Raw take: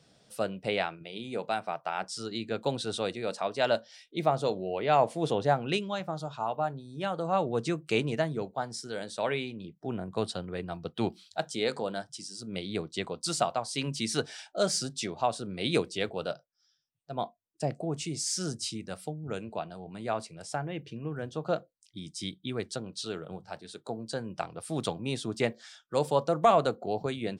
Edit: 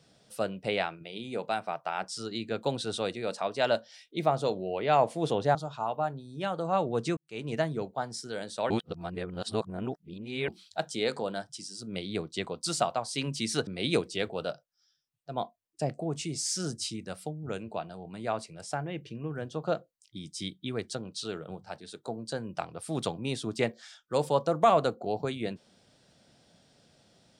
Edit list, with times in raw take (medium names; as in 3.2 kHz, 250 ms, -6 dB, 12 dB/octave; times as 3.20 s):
5.55–6.15 s: delete
7.77–8.16 s: fade in quadratic
9.30–11.08 s: reverse
14.27–15.48 s: delete